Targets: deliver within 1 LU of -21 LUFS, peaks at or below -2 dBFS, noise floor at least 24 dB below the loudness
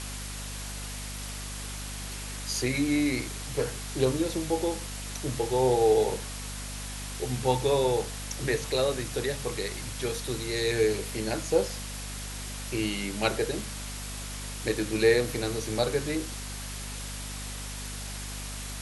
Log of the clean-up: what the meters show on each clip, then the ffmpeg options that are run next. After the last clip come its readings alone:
hum 50 Hz; harmonics up to 250 Hz; hum level -37 dBFS; noise floor -37 dBFS; noise floor target -54 dBFS; loudness -30.0 LUFS; peak -10.5 dBFS; loudness target -21.0 LUFS
-> -af "bandreject=f=50:t=h:w=6,bandreject=f=100:t=h:w=6,bandreject=f=150:t=h:w=6,bandreject=f=200:t=h:w=6,bandreject=f=250:t=h:w=6"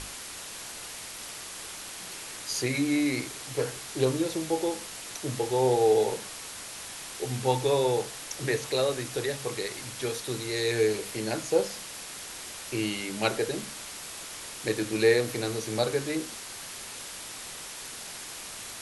hum none; noise floor -41 dBFS; noise floor target -54 dBFS
-> -af "afftdn=nr=13:nf=-41"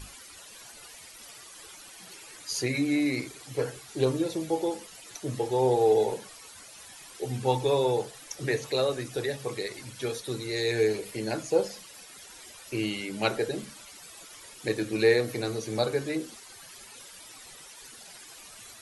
noise floor -49 dBFS; noise floor target -53 dBFS
-> -af "afftdn=nr=6:nf=-49"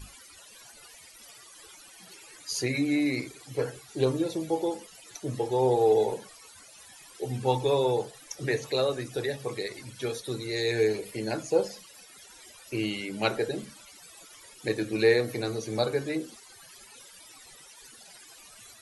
noise floor -52 dBFS; noise floor target -53 dBFS
-> -af "afftdn=nr=6:nf=-52"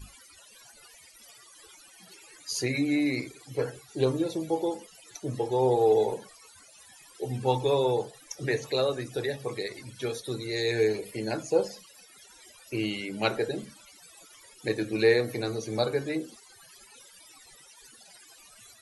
noise floor -55 dBFS; loudness -29.0 LUFS; peak -11.0 dBFS; loudness target -21.0 LUFS
-> -af "volume=8dB"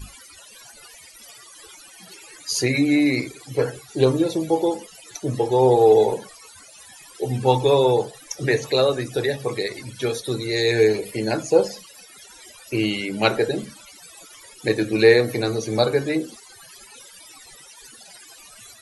loudness -21.0 LUFS; peak -3.0 dBFS; noise floor -47 dBFS

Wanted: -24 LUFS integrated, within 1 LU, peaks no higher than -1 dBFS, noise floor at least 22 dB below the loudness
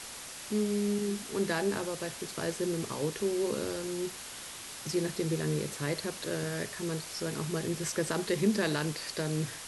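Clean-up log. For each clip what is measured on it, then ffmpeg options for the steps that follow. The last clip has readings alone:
noise floor -44 dBFS; noise floor target -55 dBFS; loudness -33.0 LUFS; peak -16.0 dBFS; loudness target -24.0 LUFS
-> -af "afftdn=nr=11:nf=-44"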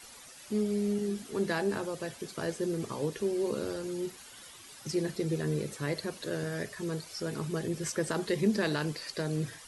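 noise floor -51 dBFS; noise floor target -56 dBFS
-> -af "afftdn=nr=6:nf=-51"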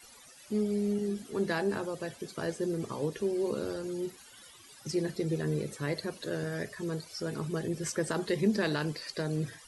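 noise floor -54 dBFS; noise floor target -56 dBFS
-> -af "afftdn=nr=6:nf=-54"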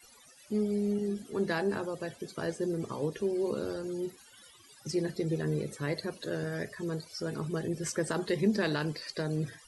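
noise floor -57 dBFS; loudness -33.5 LUFS; peak -16.5 dBFS; loudness target -24.0 LUFS
-> -af "volume=9.5dB"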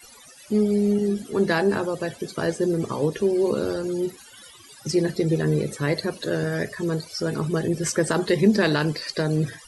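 loudness -24.0 LUFS; peak -7.0 dBFS; noise floor -48 dBFS

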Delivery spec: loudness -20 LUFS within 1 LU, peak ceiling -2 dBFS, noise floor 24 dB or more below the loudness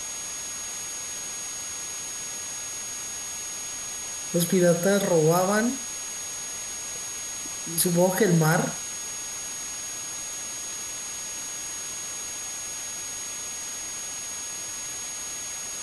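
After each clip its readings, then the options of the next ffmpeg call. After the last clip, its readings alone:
steady tone 6600 Hz; tone level -33 dBFS; noise floor -34 dBFS; noise floor target -52 dBFS; loudness -27.5 LUFS; peak -8.0 dBFS; loudness target -20.0 LUFS
-> -af "bandreject=f=6.6k:w=30"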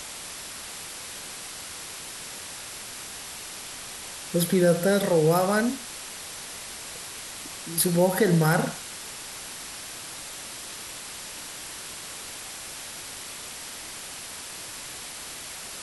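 steady tone none; noise floor -39 dBFS; noise floor target -53 dBFS
-> -af "afftdn=nr=14:nf=-39"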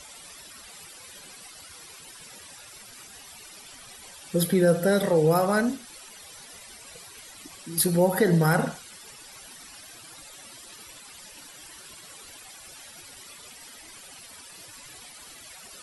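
noise floor -47 dBFS; loudness -23.0 LUFS; peak -8.5 dBFS; loudness target -20.0 LUFS
-> -af "volume=3dB"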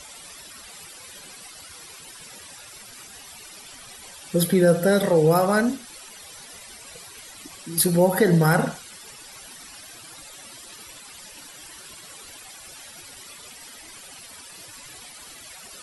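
loudness -20.0 LUFS; peak -5.5 dBFS; noise floor -44 dBFS

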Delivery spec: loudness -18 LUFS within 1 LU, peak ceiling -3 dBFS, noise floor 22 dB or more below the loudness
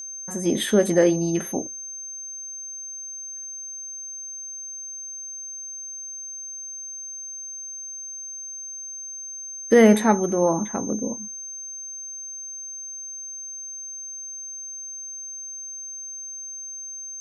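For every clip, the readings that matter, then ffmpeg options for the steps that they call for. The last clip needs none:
steady tone 6300 Hz; tone level -33 dBFS; loudness -27.0 LUFS; peak -4.0 dBFS; loudness target -18.0 LUFS
-> -af "bandreject=f=6.3k:w=30"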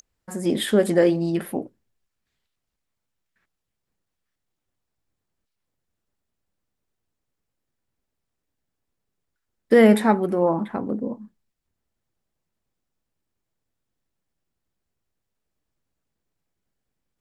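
steady tone none; loudness -20.5 LUFS; peak -4.0 dBFS; loudness target -18.0 LUFS
-> -af "volume=2.5dB,alimiter=limit=-3dB:level=0:latency=1"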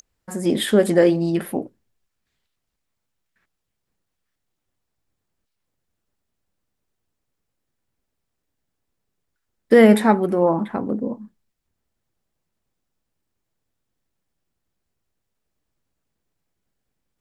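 loudness -18.0 LUFS; peak -3.0 dBFS; noise floor -79 dBFS

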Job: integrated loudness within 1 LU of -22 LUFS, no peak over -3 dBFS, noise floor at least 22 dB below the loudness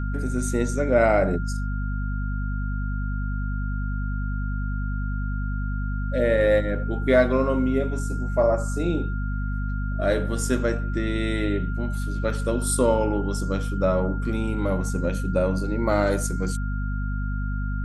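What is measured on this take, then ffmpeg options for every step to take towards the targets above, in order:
hum 50 Hz; harmonics up to 250 Hz; hum level -24 dBFS; steady tone 1400 Hz; tone level -37 dBFS; loudness -25.0 LUFS; peak -6.5 dBFS; loudness target -22.0 LUFS
-> -af "bandreject=f=50:t=h:w=6,bandreject=f=100:t=h:w=6,bandreject=f=150:t=h:w=6,bandreject=f=200:t=h:w=6,bandreject=f=250:t=h:w=6"
-af "bandreject=f=1.4k:w=30"
-af "volume=3dB"

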